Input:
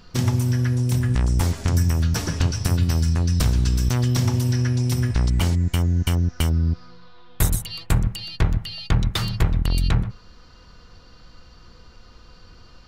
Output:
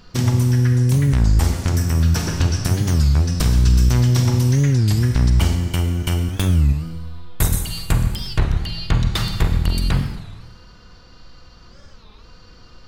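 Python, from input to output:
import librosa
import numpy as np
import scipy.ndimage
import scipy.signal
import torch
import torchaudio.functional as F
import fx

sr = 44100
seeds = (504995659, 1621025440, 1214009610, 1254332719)

y = fx.rev_schroeder(x, sr, rt60_s=1.3, comb_ms=33, drr_db=5.0)
y = fx.record_warp(y, sr, rpm=33.33, depth_cents=250.0)
y = F.gain(torch.from_numpy(y), 1.5).numpy()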